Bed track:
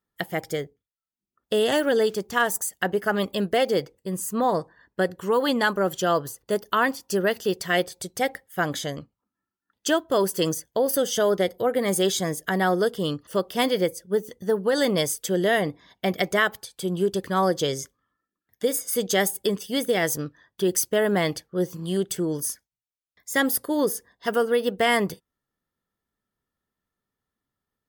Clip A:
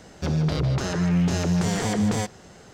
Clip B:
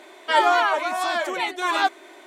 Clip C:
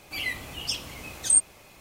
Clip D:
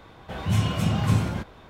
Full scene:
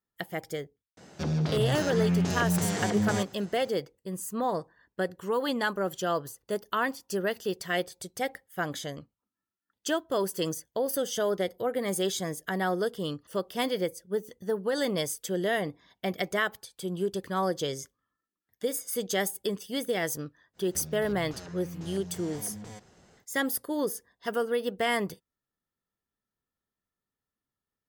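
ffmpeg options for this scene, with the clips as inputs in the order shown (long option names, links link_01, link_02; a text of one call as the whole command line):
ffmpeg -i bed.wav -i cue0.wav -filter_complex "[1:a]asplit=2[link_01][link_02];[0:a]volume=-6.5dB[link_03];[link_01]highpass=frequency=94:width=0.5412,highpass=frequency=94:width=1.3066[link_04];[link_02]acompressor=threshold=-28dB:ratio=6:attack=3.2:release=140:knee=1:detection=peak[link_05];[link_04]atrim=end=2.73,asetpts=PTS-STARTPTS,volume=-4.5dB,afade=type=in:duration=0.004:curve=hsin,afade=type=out:start_time=2.726:duration=0.004:curve=hsin,adelay=970[link_06];[link_05]atrim=end=2.73,asetpts=PTS-STARTPTS,volume=-11.5dB,afade=type=in:duration=0.1,afade=type=out:start_time=2.63:duration=0.1,adelay=20530[link_07];[link_03][link_06][link_07]amix=inputs=3:normalize=0" out.wav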